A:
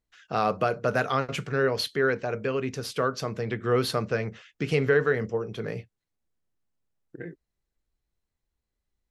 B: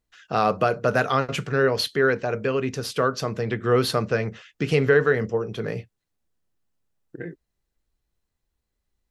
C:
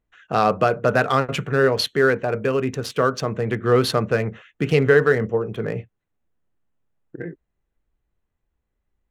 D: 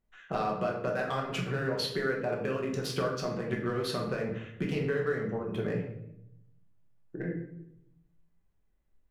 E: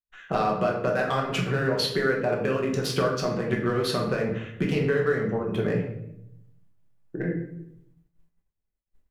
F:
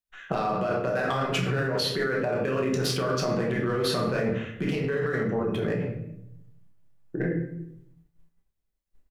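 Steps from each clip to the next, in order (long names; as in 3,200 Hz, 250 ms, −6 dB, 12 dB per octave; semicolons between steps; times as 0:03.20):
notch filter 2,200 Hz, Q 25; level +4 dB
adaptive Wiener filter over 9 samples; level +3 dB
downward compressor 6 to 1, threshold −26 dBFS, peak gain reduction 15 dB; convolution reverb RT60 0.80 s, pre-delay 5 ms, DRR −1 dB; level −5.5 dB
downward expander −58 dBFS; level +6.5 dB
in parallel at +3 dB: compressor whose output falls as the input rises −27 dBFS, ratio −0.5; on the sum: double-tracking delay 31 ms −10.5 dB; level −7.5 dB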